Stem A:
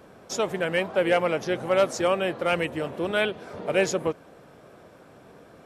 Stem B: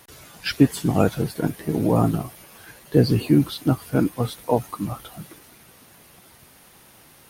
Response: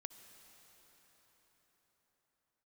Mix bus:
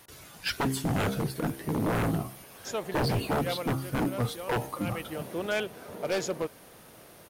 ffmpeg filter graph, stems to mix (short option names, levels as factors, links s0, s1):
-filter_complex "[0:a]adelay=2350,volume=1.88,afade=t=out:st=3.42:d=0.35:silence=0.298538,afade=t=in:st=4.67:d=0.73:silence=0.237137[s0];[1:a]bandreject=f=66.64:t=h:w=4,bandreject=f=133.28:t=h:w=4,bandreject=f=199.92:t=h:w=4,bandreject=f=266.56:t=h:w=4,bandreject=f=333.2:t=h:w=4,bandreject=f=399.84:t=h:w=4,bandreject=f=466.48:t=h:w=4,bandreject=f=533.12:t=h:w=4,bandreject=f=599.76:t=h:w=4,bandreject=f=666.4:t=h:w=4,bandreject=f=733.04:t=h:w=4,bandreject=f=799.68:t=h:w=4,bandreject=f=866.32:t=h:w=4,bandreject=f=932.96:t=h:w=4,bandreject=f=999.6:t=h:w=4,bandreject=f=1066.24:t=h:w=4,bandreject=f=1132.88:t=h:w=4,bandreject=f=1199.52:t=h:w=4,bandreject=f=1266.16:t=h:w=4,bandreject=f=1332.8:t=h:w=4,bandreject=f=1399.44:t=h:w=4,bandreject=f=1466.08:t=h:w=4,bandreject=f=1532.72:t=h:w=4,volume=0.668,asplit=2[s1][s2];[s2]apad=whole_len=353179[s3];[s0][s3]sidechaincompress=threshold=0.0355:ratio=8:attack=6.8:release=113[s4];[s4][s1]amix=inputs=2:normalize=0,aeval=exprs='0.0841*(abs(mod(val(0)/0.0841+3,4)-2)-1)':c=same"